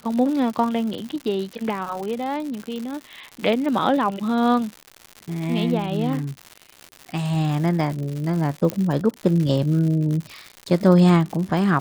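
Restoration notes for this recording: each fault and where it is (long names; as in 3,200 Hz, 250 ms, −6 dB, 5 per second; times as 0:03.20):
surface crackle 160 per second −28 dBFS
0:08.70: click −10 dBFS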